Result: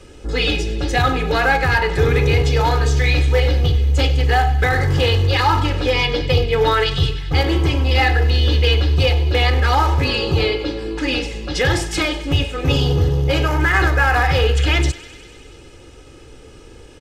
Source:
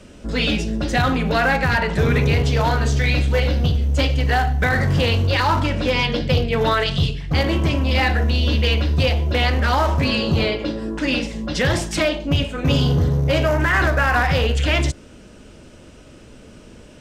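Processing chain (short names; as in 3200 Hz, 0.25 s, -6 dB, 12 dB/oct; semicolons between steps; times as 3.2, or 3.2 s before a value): comb 2.4 ms, depth 72%; thinning echo 98 ms, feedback 80%, high-pass 820 Hz, level -17 dB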